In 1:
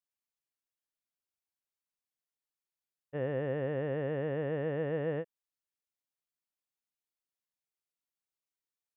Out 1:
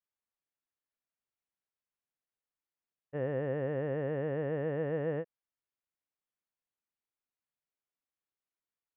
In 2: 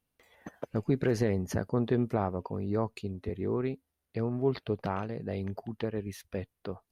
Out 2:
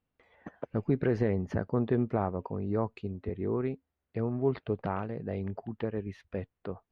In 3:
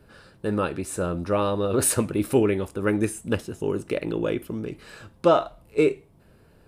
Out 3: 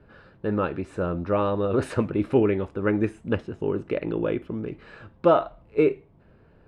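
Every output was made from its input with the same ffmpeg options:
-af "lowpass=2400"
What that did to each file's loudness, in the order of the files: 0.0 LU, 0.0 LU, -0.5 LU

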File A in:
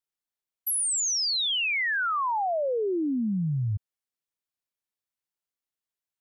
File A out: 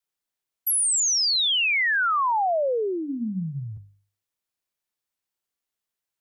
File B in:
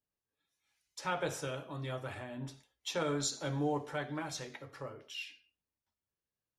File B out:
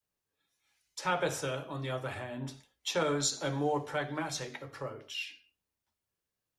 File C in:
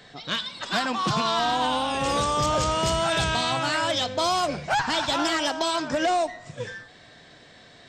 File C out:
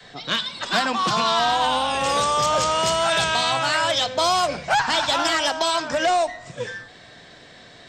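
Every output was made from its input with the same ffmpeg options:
-filter_complex "[0:a]bandreject=f=50:t=h:w=6,bandreject=f=100:t=h:w=6,bandreject=f=150:t=h:w=6,bandreject=f=200:t=h:w=6,bandreject=f=250:t=h:w=6,bandreject=f=300:t=h:w=6,adynamicequalizer=threshold=0.00631:dfrequency=300:dqfactor=1.5:tfrequency=300:tqfactor=1.5:attack=5:release=100:ratio=0.375:range=4:mode=cutabove:tftype=bell,acrossover=split=170|640|6200[s0][s1][s2][s3];[s0]acompressor=threshold=0.00501:ratio=6[s4];[s4][s1][s2][s3]amix=inputs=4:normalize=0,volume=1.68"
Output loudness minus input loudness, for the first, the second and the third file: +4.0 LU, +4.0 LU, +4.0 LU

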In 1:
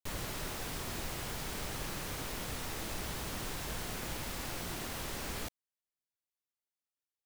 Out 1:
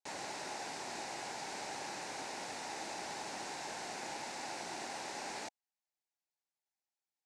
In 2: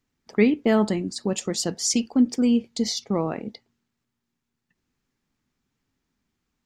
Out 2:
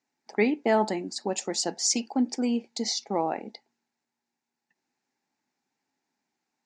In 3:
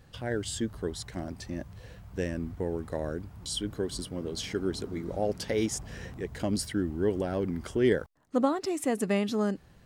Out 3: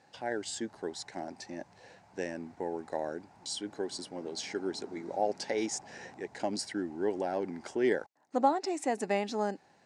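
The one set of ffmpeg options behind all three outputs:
-af "highpass=340,equalizer=f=470:t=q:w=4:g=-4,equalizer=f=820:t=q:w=4:g=9,equalizer=f=1200:t=q:w=4:g=-8,equalizer=f=3200:t=q:w=4:g=-8,lowpass=f=7900:w=0.5412,lowpass=f=7900:w=1.3066"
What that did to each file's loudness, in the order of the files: -3.0 LU, -4.0 LU, -3.0 LU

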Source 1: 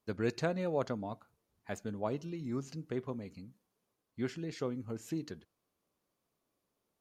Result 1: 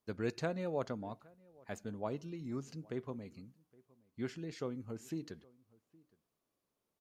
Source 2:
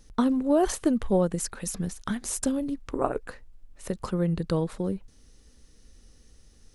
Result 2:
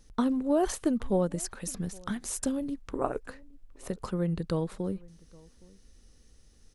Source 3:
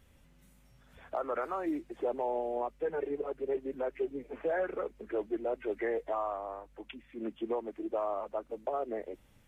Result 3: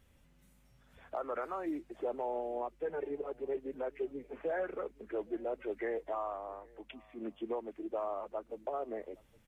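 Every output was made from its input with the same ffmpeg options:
-filter_complex "[0:a]asplit=2[s0][s1];[s1]adelay=816.3,volume=0.0562,highshelf=f=4000:g=-18.4[s2];[s0][s2]amix=inputs=2:normalize=0,volume=0.668"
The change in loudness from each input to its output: -3.5 LU, -3.5 LU, -3.5 LU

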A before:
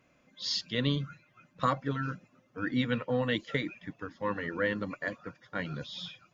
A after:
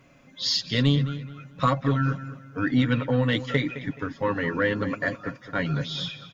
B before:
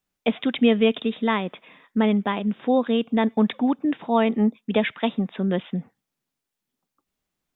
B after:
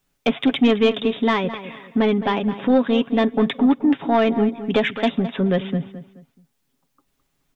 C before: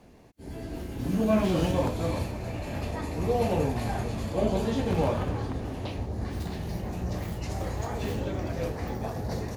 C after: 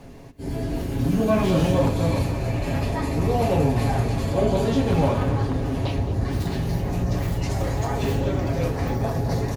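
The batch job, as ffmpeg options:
-filter_complex "[0:a]lowshelf=f=130:g=6,aecho=1:1:7.3:0.48,asplit=2[s0][s1];[s1]acompressor=threshold=0.0251:ratio=6,volume=1.12[s2];[s0][s2]amix=inputs=2:normalize=0,asoftclip=type=tanh:threshold=0.299,asplit=2[s3][s4];[s4]adelay=213,lowpass=f=3400:p=1,volume=0.224,asplit=2[s5][s6];[s6]adelay=213,lowpass=f=3400:p=1,volume=0.32,asplit=2[s7][s8];[s8]adelay=213,lowpass=f=3400:p=1,volume=0.32[s9];[s3][s5][s7][s9]amix=inputs=4:normalize=0,volume=1.26"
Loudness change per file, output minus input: +7.5 LU, +3.0 LU, +6.5 LU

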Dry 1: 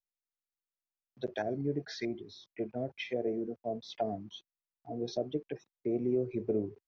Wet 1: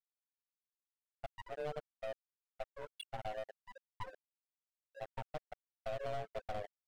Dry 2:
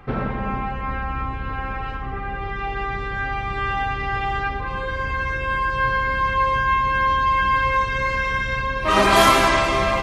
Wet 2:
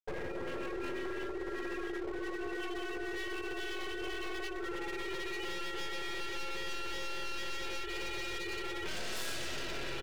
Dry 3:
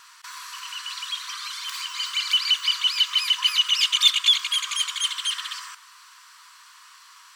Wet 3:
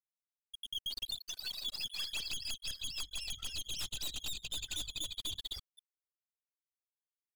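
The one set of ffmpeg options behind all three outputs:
-filter_complex "[0:a]afreqshift=310,asuperstop=centerf=2200:order=8:qfactor=7.2,aeval=exprs='0.794*(cos(1*acos(clip(val(0)/0.794,-1,1)))-cos(1*PI/2))+0.0126*(cos(5*acos(clip(val(0)/0.794,-1,1)))-cos(5*PI/2))+0.178*(cos(8*acos(clip(val(0)/0.794,-1,1)))-cos(8*PI/2))':c=same,equalizer=f=1000:t=o:w=1.3:g=-11,asplit=4[s0][s1][s2][s3];[s1]adelay=495,afreqshift=42,volume=0.106[s4];[s2]adelay=990,afreqshift=84,volume=0.0447[s5];[s3]adelay=1485,afreqshift=126,volume=0.0186[s6];[s0][s4][s5][s6]amix=inputs=4:normalize=0,afftfilt=real='re*gte(hypot(re,im),0.0562)':imag='im*gte(hypot(re,im),0.0562)':win_size=1024:overlap=0.75,aeval=exprs='sgn(val(0))*max(abs(val(0))-0.00562,0)':c=same,acompressor=threshold=0.02:ratio=5,volume=59.6,asoftclip=hard,volume=0.0168,volume=1.33"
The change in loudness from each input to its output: -10.0 LU, -18.0 LU, -17.5 LU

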